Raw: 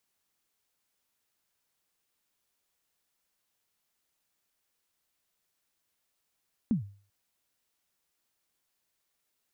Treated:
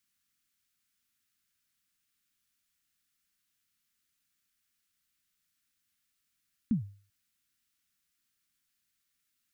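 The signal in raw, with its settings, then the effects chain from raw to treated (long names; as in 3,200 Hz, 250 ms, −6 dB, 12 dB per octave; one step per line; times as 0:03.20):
synth kick length 0.39 s, from 250 Hz, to 100 Hz, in 119 ms, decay 0.42 s, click off, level −20 dB
flat-topped bell 610 Hz −15.5 dB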